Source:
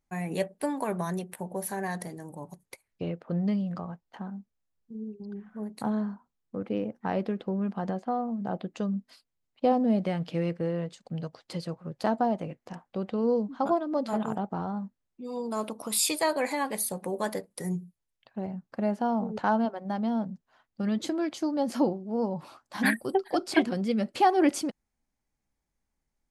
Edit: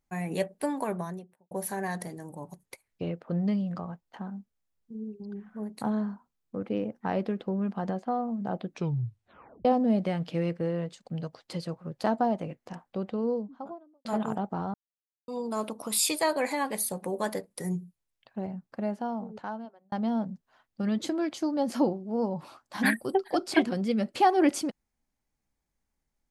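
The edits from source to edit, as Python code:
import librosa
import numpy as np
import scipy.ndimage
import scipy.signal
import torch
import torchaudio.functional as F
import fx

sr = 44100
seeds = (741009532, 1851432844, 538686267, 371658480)

y = fx.studio_fade_out(x, sr, start_s=0.76, length_s=0.75)
y = fx.studio_fade_out(y, sr, start_s=12.83, length_s=1.22)
y = fx.edit(y, sr, fx.tape_stop(start_s=8.66, length_s=0.99),
    fx.silence(start_s=14.74, length_s=0.54),
    fx.fade_out_span(start_s=18.38, length_s=1.54), tone=tone)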